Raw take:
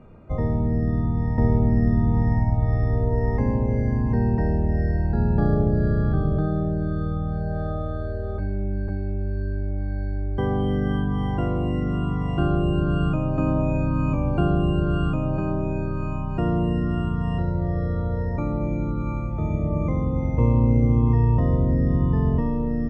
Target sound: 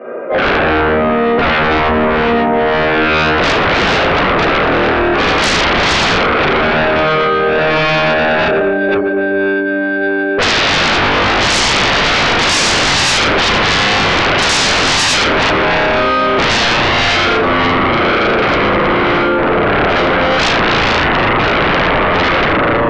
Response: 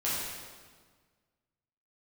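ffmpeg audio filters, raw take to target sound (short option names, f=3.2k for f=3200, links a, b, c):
-filter_complex "[0:a]highpass=f=350:w=0.5412,highpass=f=350:w=1.3066,equalizer=f=380:t=q:w=4:g=4,equalizer=f=550:t=q:w=4:g=9,equalizer=f=890:t=q:w=4:g=-6,equalizer=f=1.6k:t=q:w=4:g=6,lowpass=f=2.3k:w=0.5412,lowpass=f=2.3k:w=1.3066[a];[1:a]atrim=start_sample=2205,asetrate=66150,aresample=44100[b];[a][b]afir=irnorm=-1:irlink=0,aeval=exprs='0.355*sin(PI/2*10*val(0)/0.355)':c=same"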